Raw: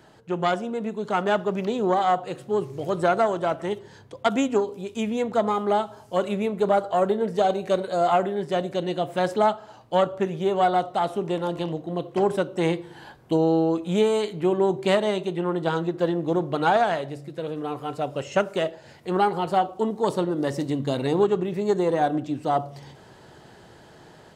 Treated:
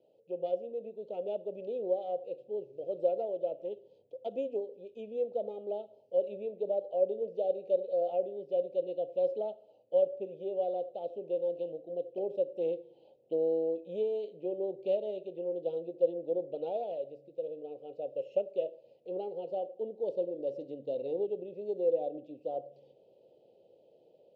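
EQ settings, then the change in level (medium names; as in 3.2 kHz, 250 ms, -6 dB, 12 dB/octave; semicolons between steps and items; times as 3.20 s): vowel filter e; Butterworth band-stop 1.7 kHz, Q 0.61; distance through air 160 m; 0.0 dB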